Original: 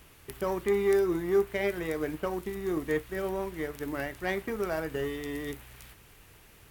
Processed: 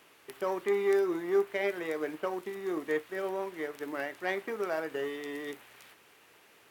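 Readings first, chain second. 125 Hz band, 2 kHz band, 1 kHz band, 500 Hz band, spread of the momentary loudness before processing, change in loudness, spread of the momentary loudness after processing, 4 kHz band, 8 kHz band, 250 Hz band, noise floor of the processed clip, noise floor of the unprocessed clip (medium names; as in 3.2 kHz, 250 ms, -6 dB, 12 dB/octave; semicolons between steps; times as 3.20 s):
-13.0 dB, -0.5 dB, -0.5 dB, -1.5 dB, 10 LU, -2.0 dB, 10 LU, -1.5 dB, -5.0 dB, -4.0 dB, -61 dBFS, -56 dBFS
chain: high-pass 340 Hz 12 dB/octave; treble shelf 6.9 kHz -9 dB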